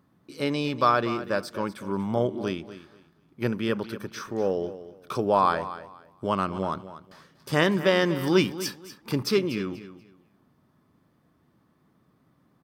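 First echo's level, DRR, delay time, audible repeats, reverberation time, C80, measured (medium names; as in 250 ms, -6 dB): -14.0 dB, no reverb, 241 ms, 2, no reverb, no reverb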